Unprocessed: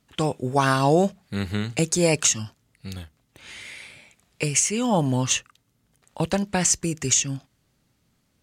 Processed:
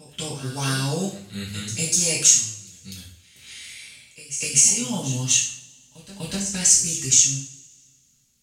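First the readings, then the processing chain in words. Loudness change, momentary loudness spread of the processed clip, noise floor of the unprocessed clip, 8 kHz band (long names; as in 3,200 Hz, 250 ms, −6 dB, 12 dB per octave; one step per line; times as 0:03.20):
+3.5 dB, 22 LU, −69 dBFS, +7.0 dB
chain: drawn EQ curve 110 Hz 0 dB, 760 Hz −14 dB, 5,400 Hz +7 dB
echo ahead of the sound 247 ms −14 dB
coupled-rooms reverb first 0.51 s, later 1.9 s, from −24 dB, DRR −6 dB
level −7 dB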